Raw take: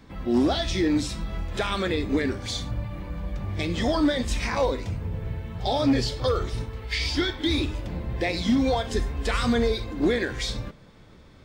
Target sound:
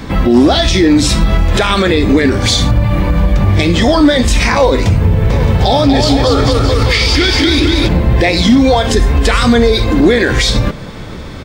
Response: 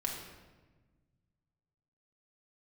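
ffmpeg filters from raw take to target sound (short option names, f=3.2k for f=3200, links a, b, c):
-filter_complex "[0:a]acompressor=threshold=-33dB:ratio=2,asplit=3[a][b][c];[a]afade=t=out:st=5.29:d=0.02[d];[b]aecho=1:1:240|444|617.4|764.8|890.1:0.631|0.398|0.251|0.158|0.1,afade=t=in:st=5.29:d=0.02,afade=t=out:st=7.87:d=0.02[e];[c]afade=t=in:st=7.87:d=0.02[f];[d][e][f]amix=inputs=3:normalize=0,alimiter=level_in=25.5dB:limit=-1dB:release=50:level=0:latency=1,volume=-1dB"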